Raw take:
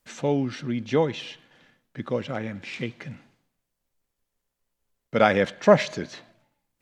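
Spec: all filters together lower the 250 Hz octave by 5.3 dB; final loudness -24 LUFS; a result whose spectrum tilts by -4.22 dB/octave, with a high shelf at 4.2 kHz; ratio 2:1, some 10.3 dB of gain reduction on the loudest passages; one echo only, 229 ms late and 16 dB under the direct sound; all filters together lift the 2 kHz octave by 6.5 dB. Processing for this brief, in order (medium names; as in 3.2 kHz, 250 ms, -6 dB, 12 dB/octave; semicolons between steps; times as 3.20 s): peaking EQ 250 Hz -7 dB; peaking EQ 2 kHz +7 dB; treble shelf 4.2 kHz +5 dB; compression 2:1, threshold -30 dBFS; delay 229 ms -16 dB; trim +8 dB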